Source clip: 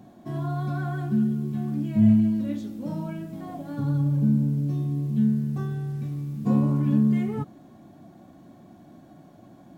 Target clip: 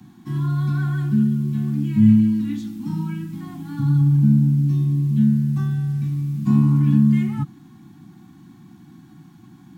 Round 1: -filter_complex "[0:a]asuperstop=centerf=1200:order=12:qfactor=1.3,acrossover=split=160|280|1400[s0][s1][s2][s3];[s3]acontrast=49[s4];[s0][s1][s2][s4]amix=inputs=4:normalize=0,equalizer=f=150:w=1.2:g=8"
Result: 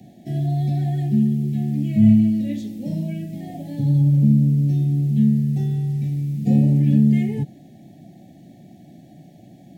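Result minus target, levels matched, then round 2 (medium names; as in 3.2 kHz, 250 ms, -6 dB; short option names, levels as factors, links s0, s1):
500 Hz band +7.0 dB
-filter_complex "[0:a]asuperstop=centerf=530:order=12:qfactor=1.3,acrossover=split=160|280|1400[s0][s1][s2][s3];[s3]acontrast=49[s4];[s0][s1][s2][s4]amix=inputs=4:normalize=0,equalizer=f=150:w=1.2:g=8"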